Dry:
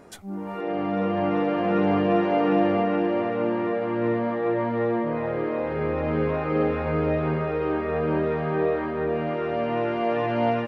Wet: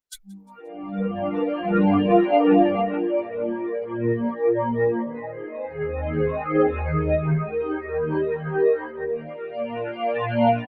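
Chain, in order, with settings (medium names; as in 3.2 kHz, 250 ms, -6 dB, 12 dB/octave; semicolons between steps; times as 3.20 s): expander on every frequency bin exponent 3; frequency-shifting echo 176 ms, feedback 44%, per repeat +58 Hz, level -23.5 dB; trim +8.5 dB; Opus 32 kbps 48 kHz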